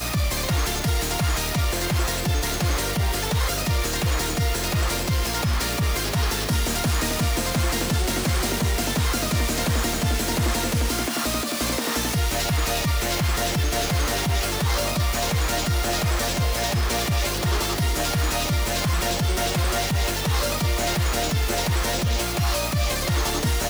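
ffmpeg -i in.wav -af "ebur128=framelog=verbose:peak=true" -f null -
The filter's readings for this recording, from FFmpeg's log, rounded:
Integrated loudness:
  I:         -23.2 LUFS
  Threshold: -33.2 LUFS
Loudness range:
  LRA:         0.6 LU
  Threshold: -43.2 LUFS
  LRA low:   -23.5 LUFS
  LRA high:  -23.0 LUFS
True peak:
  Peak:      -14.3 dBFS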